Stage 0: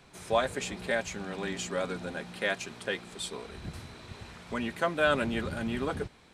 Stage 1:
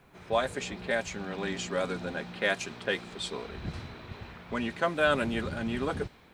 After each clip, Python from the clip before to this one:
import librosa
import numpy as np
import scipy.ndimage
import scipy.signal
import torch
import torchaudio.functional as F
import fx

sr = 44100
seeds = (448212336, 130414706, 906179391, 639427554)

y = fx.rider(x, sr, range_db=4, speed_s=2.0)
y = fx.env_lowpass(y, sr, base_hz=2300.0, full_db=-24.5)
y = fx.quant_dither(y, sr, seeds[0], bits=12, dither='none')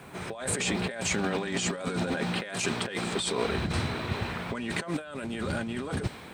y = scipy.signal.sosfilt(scipy.signal.butter(2, 79.0, 'highpass', fs=sr, output='sos'), x)
y = fx.peak_eq(y, sr, hz=8500.0, db=10.5, octaves=0.27)
y = fx.over_compress(y, sr, threshold_db=-39.0, ratio=-1.0)
y = F.gain(torch.from_numpy(y), 7.0).numpy()